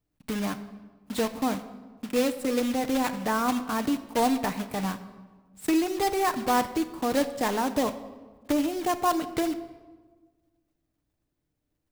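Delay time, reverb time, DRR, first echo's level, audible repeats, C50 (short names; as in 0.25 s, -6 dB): none, 1.4 s, 8.5 dB, none, none, 13.0 dB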